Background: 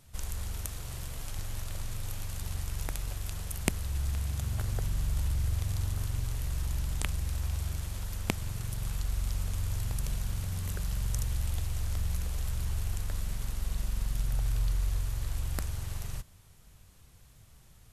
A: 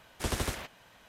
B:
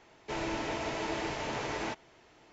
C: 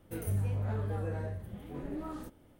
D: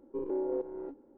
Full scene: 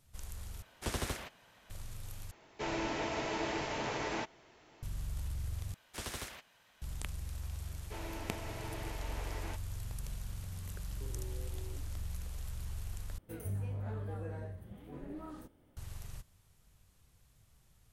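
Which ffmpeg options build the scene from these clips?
ffmpeg -i bed.wav -i cue0.wav -i cue1.wav -i cue2.wav -i cue3.wav -filter_complex "[1:a]asplit=2[link_01][link_02];[2:a]asplit=2[link_03][link_04];[0:a]volume=-9dB[link_05];[link_01]aresample=32000,aresample=44100[link_06];[link_02]tiltshelf=frequency=970:gain=-3.5[link_07];[4:a]acompressor=threshold=-41dB:ratio=6:attack=3.2:release=140:knee=1:detection=peak[link_08];[link_05]asplit=5[link_09][link_10][link_11][link_12][link_13];[link_09]atrim=end=0.624[link_14];[link_06]atrim=end=1.08,asetpts=PTS-STARTPTS,volume=-4.5dB[link_15];[link_10]atrim=start=1.696:end=2.314[link_16];[link_03]atrim=end=2.52,asetpts=PTS-STARTPTS,volume=-1.5dB[link_17];[link_11]atrim=start=4.826:end=5.744[link_18];[link_07]atrim=end=1.08,asetpts=PTS-STARTPTS,volume=-9.5dB[link_19];[link_12]atrim=start=6.816:end=13.184[link_20];[3:a]atrim=end=2.59,asetpts=PTS-STARTPTS,volume=-6dB[link_21];[link_13]atrim=start=15.766[link_22];[link_04]atrim=end=2.52,asetpts=PTS-STARTPTS,volume=-10.5dB,afade=type=in:duration=0.004:curve=hsin,afade=type=out:start_time=2.516:duration=0.004:curve=hsin,adelay=336042S[link_23];[link_08]atrim=end=1.17,asetpts=PTS-STARTPTS,volume=-8.5dB,afade=type=in:duration=0.004:curve=hsin,afade=type=out:start_time=1.166:duration=0.004:curve=hsin,adelay=10870[link_24];[link_14][link_15]acrossfade=duration=0.004:curve1=hsin:curve2=hsin[link_25];[link_25][link_16]acrossfade=duration=0.004:curve1=hsin:curve2=hsin[link_26];[link_26][link_17]acrossfade=duration=0.004:curve1=hsin:curve2=hsin[link_27];[link_27][link_18]acrossfade=duration=0.004:curve1=hsin:curve2=hsin[link_28];[link_28][link_19]acrossfade=duration=0.004:curve1=hsin:curve2=hsin[link_29];[link_29][link_20]acrossfade=duration=0.004:curve1=hsin:curve2=hsin[link_30];[link_30][link_21]acrossfade=duration=0.004:curve1=hsin:curve2=hsin[link_31];[link_31][link_22]acrossfade=duration=0.004:curve1=hsin:curve2=hsin[link_32];[link_32][link_23][link_24]amix=inputs=3:normalize=0" out.wav

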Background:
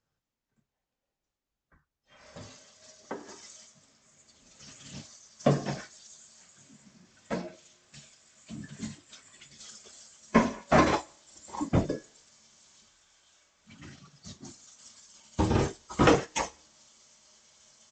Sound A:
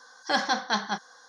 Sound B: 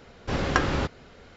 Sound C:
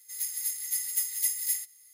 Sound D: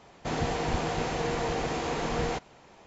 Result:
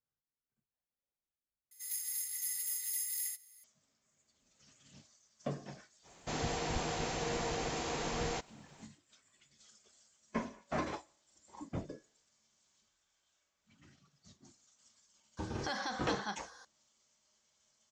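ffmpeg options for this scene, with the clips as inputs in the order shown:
ffmpeg -i bed.wav -i cue0.wav -i cue1.wav -i cue2.wav -i cue3.wav -filter_complex "[0:a]volume=-15dB[link_01];[3:a]alimiter=limit=-23.5dB:level=0:latency=1:release=20[link_02];[4:a]highshelf=frequency=4800:gain=12[link_03];[1:a]acompressor=threshold=-28dB:ratio=5:attack=0.18:release=176:knee=6:detection=peak[link_04];[link_01]asplit=2[link_05][link_06];[link_05]atrim=end=1.714[link_07];[link_02]atrim=end=1.93,asetpts=PTS-STARTPTS,volume=-4dB[link_08];[link_06]atrim=start=3.636[link_09];[link_03]atrim=end=2.86,asetpts=PTS-STARTPTS,volume=-7.5dB,afade=type=in:duration=0.05,afade=type=out:start_time=2.81:duration=0.05,adelay=6020[link_10];[link_04]atrim=end=1.28,asetpts=PTS-STARTPTS,volume=-3dB,afade=type=in:duration=0.004:curve=hsin,afade=type=out:start_time=1.276:duration=0.004:curve=hsin,adelay=15370[link_11];[link_07][link_08]acrossfade=duration=0.004:curve1=hsin:curve2=hsin[link_12];[link_12][link_09]acrossfade=duration=0.004:curve1=hsin:curve2=hsin[link_13];[link_13][link_10][link_11]amix=inputs=3:normalize=0" out.wav

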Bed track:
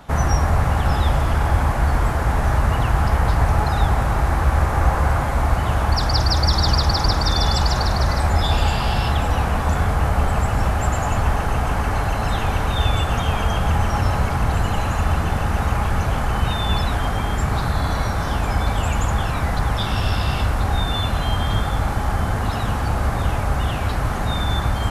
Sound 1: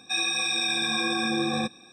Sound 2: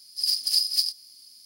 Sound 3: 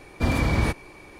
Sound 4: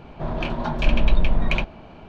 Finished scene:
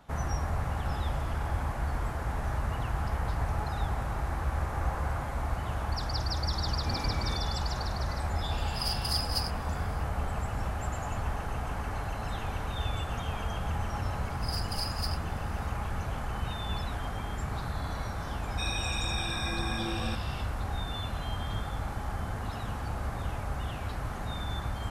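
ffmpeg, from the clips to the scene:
ffmpeg -i bed.wav -i cue0.wav -i cue1.wav -i cue2.wav -filter_complex "[2:a]asplit=2[link_01][link_02];[0:a]volume=-13.5dB[link_03];[3:a]atrim=end=1.19,asetpts=PTS-STARTPTS,volume=-14.5dB,afade=type=in:duration=0.004:curve=hsin,afade=type=out:start_time=1.186:duration=0.004:curve=hsin,adelay=6650[link_04];[link_01]atrim=end=1.45,asetpts=PTS-STARTPTS,volume=-9.5dB,afade=type=in:duration=0.004:curve=hsin,afade=type=out:start_time=1.446:duration=0.004:curve=hsin,adelay=378378S[link_05];[link_02]atrim=end=1.45,asetpts=PTS-STARTPTS,volume=-14dB,afade=type=in:duration=0.004:curve=hsin,afade=type=out:start_time=1.446:duration=0.004:curve=hsin,adelay=14250[link_06];[1:a]atrim=end=1.92,asetpts=PTS-STARTPTS,volume=-9dB,afade=type=in:duration=0.004:curve=hsin,afade=type=out:start_time=1.916:duration=0.004:curve=hsin,adelay=18480[link_07];[link_03][link_04][link_05][link_06][link_07]amix=inputs=5:normalize=0" out.wav

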